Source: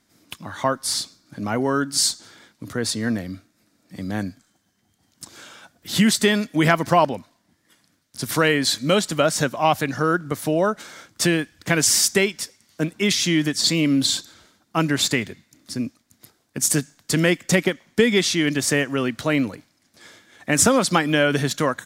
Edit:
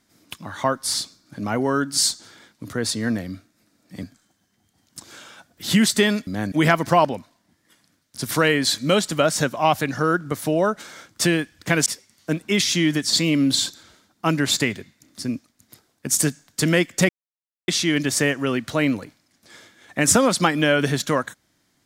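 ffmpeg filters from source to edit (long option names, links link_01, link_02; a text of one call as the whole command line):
ffmpeg -i in.wav -filter_complex "[0:a]asplit=7[link_01][link_02][link_03][link_04][link_05][link_06][link_07];[link_01]atrim=end=4.032[link_08];[link_02]atrim=start=4.278:end=6.522[link_09];[link_03]atrim=start=4.028:end=4.282[link_10];[link_04]atrim=start=6.518:end=11.862[link_11];[link_05]atrim=start=12.368:end=17.6,asetpts=PTS-STARTPTS,afade=type=out:start_time=5.228:duration=0.004:curve=hsin[link_12];[link_06]atrim=start=17.6:end=18.19,asetpts=PTS-STARTPTS,volume=0[link_13];[link_07]atrim=start=18.19,asetpts=PTS-STARTPTS,afade=type=in:duration=0.004:curve=hsin[link_14];[link_08][link_09]acrossfade=duration=0.004:curve1=hsin:curve2=hsin[link_15];[link_15][link_10]acrossfade=duration=0.004:curve1=hsin:curve2=hsin[link_16];[link_16][link_11]acrossfade=duration=0.004:curve1=hsin:curve2=hsin[link_17];[link_12][link_13][link_14]concat=n=3:v=0:a=1[link_18];[link_17][link_18]acrossfade=duration=0.004:curve1=hsin:curve2=hsin" out.wav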